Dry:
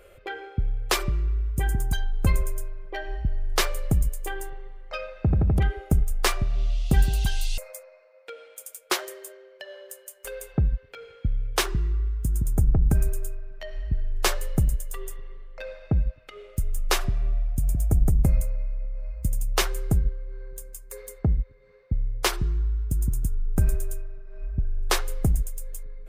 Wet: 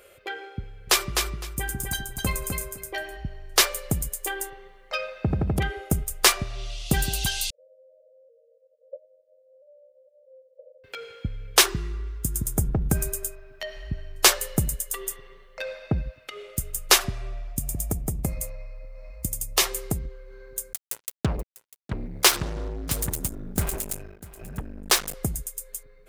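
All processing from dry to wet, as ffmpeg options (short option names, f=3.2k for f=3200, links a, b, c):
-filter_complex "[0:a]asettb=1/sr,asplit=3[a][b][c];[a]atrim=end=0.624[d];[b]atrim=start=0.62:end=3.17,asetpts=PTS-STARTPTS,afade=t=in:d=0.004:c=qsin,afade=t=out:st=2.546:d=0.004:c=qsin,asplit=2[e][f];[f]adelay=16,volume=-11dB[g];[e][g]amix=inputs=2:normalize=0,atrim=end_sample=112455,aecho=1:1:255|510|765:0.562|0.101|0.0182,atrim=end_sample=112455[h];[c]atrim=start=3.166[i];[d][h]acrossfade=d=0.004:c1=hsin:c2=qsin[j];[j][i]acrossfade=d=0.004:c1=qsin:c2=hsin,asettb=1/sr,asplit=3[k][l][m];[k]atrim=end=7.504[n];[l]atrim=start=7.5:end=10.84,asetpts=PTS-STARTPTS,afade=t=in:d=0.004:c=qsin,afade=t=out:st=3.336:d=0.004:c=qsin,aeval=exprs='val(0)+0.5*0.0355*sgn(val(0))':c=same,agate=range=-22dB:threshold=-22dB:ratio=16:release=100:detection=peak,asuperpass=centerf=540:order=12:qfactor=3.7[o];[m]atrim=start=10.836[p];[n][o]acrossfade=d=0.004:c1=hsin:c2=qsin[q];[q][p]acrossfade=d=0.004:c1=qsin:c2=hsin,asettb=1/sr,asplit=3[r][s][t];[r]atrim=end=17.534[u];[s]atrim=start=17.53:end=20.14,asetpts=PTS-STARTPTS,afade=t=in:d=0.004:c=qsin,afade=t=out:st=2.606:d=0.004:c=qsin,acompressor=threshold=-21dB:ratio=2.5:attack=3.2:release=140:knee=1:detection=peak,aeval=exprs='0.188*(abs(mod(val(0)/0.188+3,4)-2)-1)':c=same,bandreject=f=1.5k:w=5.8[v];[t]atrim=start=20.136[w];[u][v]acrossfade=d=0.004:c1=hsin:c2=qsin[x];[x][w]acrossfade=d=0.004:c1=qsin:c2=hsin,asettb=1/sr,asplit=3[y][z][aa];[y]atrim=end=20.734[ab];[z]atrim=start=20.73:end=25.14,asetpts=PTS-STARTPTS,afade=t=in:d=0.004:c=qsin,afade=t=out:st=4.406:d=0.004:c=qsin,acrusher=bits=4:mix=0:aa=0.5,aecho=1:1:647:0.133,atrim=end_sample=194481[ac];[aa]atrim=start=25.136[ad];[ab][ac]acrossfade=d=0.004:c1=hsin:c2=qsin[ae];[ae][ad]acrossfade=d=0.004:c1=qsin:c2=hsin,highpass=f=160:p=1,highshelf=f=2.6k:g=8.5,dynaudnorm=f=730:g=9:m=11.5dB,volume=-1dB"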